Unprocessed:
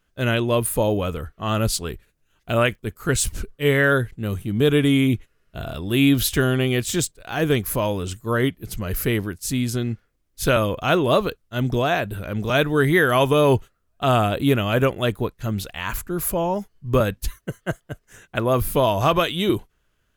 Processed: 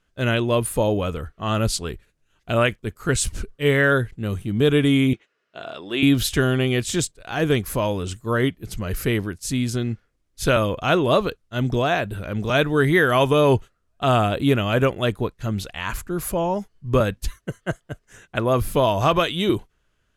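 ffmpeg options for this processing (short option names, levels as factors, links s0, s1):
-filter_complex "[0:a]asettb=1/sr,asplit=3[s0][s1][s2];[s0]atrim=end=5.134[s3];[s1]atrim=start=5.13:end=6.03,asetpts=PTS-STARTPTS,afade=t=in:d=0.004:c=qsin,afade=t=out:st=0.896:d=0.004:c=qsin,highpass=380,lowpass=5500[s4];[s2]atrim=start=6.026[s5];[s3][s4]acrossfade=d=0.004:c1=hsin:c2=qsin[s6];[s6][s5]acrossfade=d=0.004:c1=qsin:c2=hsin,lowpass=9900"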